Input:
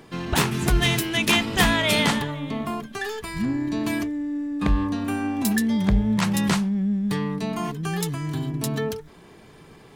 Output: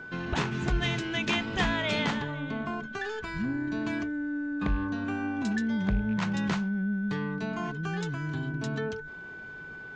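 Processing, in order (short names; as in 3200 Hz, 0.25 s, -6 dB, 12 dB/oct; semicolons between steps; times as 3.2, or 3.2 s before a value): rattling part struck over -19 dBFS, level -30 dBFS; Chebyshev low-pass 7000 Hz, order 4; high shelf 4900 Hz -11 dB; in parallel at +2 dB: compressor, threshold -32 dBFS, peak gain reduction 16 dB; on the sum: whine 1500 Hz -32 dBFS; gain -8.5 dB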